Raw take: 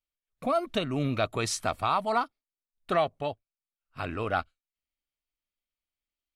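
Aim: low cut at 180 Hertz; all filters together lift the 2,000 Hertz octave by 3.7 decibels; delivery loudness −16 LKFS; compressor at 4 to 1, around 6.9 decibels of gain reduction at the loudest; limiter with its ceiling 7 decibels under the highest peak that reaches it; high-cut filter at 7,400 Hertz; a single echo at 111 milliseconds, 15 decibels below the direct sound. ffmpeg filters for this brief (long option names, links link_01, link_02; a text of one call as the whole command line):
ffmpeg -i in.wav -af "highpass=180,lowpass=7400,equalizer=frequency=2000:width_type=o:gain=5.5,acompressor=threshold=-28dB:ratio=4,alimiter=limit=-21.5dB:level=0:latency=1,aecho=1:1:111:0.178,volume=19dB" out.wav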